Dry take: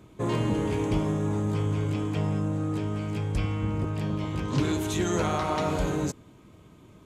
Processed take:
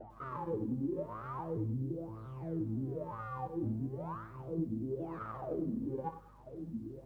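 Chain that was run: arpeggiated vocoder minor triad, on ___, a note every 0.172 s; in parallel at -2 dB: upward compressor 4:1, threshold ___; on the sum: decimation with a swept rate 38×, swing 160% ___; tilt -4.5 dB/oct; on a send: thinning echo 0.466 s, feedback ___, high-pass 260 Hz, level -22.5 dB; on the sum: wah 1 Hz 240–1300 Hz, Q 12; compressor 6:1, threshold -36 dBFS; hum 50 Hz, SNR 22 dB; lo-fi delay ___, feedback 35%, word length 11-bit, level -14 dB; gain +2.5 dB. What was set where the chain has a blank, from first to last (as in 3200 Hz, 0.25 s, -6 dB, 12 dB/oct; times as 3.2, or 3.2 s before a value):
A2, -29 dBFS, 0.37 Hz, 59%, 97 ms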